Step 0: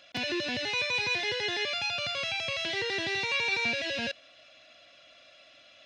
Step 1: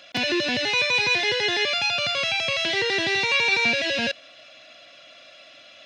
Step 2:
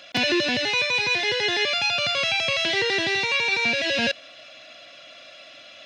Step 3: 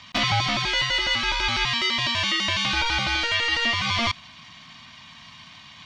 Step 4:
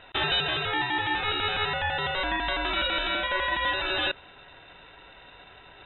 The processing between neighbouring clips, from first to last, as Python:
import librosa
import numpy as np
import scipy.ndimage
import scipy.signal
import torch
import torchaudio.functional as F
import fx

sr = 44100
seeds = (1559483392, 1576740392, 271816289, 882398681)

y1 = scipy.signal.sosfilt(scipy.signal.butter(2, 110.0, 'highpass', fs=sr, output='sos'), x)
y1 = y1 * librosa.db_to_amplitude(8.0)
y2 = fx.rider(y1, sr, range_db=10, speed_s=0.5)
y3 = y2 * np.sin(2.0 * np.pi * 460.0 * np.arange(len(y2)) / sr)
y3 = y3 * librosa.db_to_amplitude(2.5)
y4 = fx.freq_invert(y3, sr, carrier_hz=3800)
y4 = y4 * librosa.db_to_amplitude(-3.5)